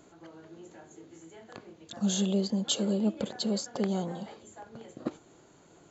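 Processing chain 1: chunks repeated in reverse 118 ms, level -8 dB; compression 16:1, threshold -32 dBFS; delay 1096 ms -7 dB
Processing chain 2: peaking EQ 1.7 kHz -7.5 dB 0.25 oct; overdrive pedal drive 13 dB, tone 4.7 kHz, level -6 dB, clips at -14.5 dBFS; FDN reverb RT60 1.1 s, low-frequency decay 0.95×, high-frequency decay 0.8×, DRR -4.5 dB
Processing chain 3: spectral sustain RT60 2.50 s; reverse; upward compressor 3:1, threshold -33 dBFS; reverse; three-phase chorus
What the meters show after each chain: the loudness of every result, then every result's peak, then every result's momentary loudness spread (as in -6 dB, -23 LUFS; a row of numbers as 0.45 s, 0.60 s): -38.0 LUFS, -26.5 LUFS, -29.0 LUFS; -21.0 dBFS, -10.5 dBFS, -15.5 dBFS; 15 LU, 18 LU, 18 LU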